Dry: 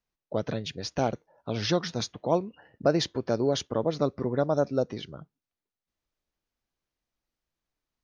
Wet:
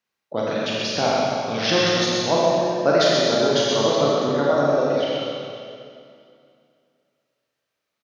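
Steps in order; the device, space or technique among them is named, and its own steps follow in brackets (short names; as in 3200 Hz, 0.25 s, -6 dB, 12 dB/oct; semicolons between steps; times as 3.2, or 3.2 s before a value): 3.59–4.9 LPF 5600 Hz; reverb removal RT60 1.5 s; PA in a hall (HPF 150 Hz 12 dB/oct; bell 2200 Hz +7 dB 2.3 oct; echo 0.128 s -4.5 dB; reverb RT60 2.4 s, pre-delay 78 ms, DRR 4.5 dB); Schroeder reverb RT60 1.4 s, combs from 28 ms, DRR -3.5 dB; gain +1 dB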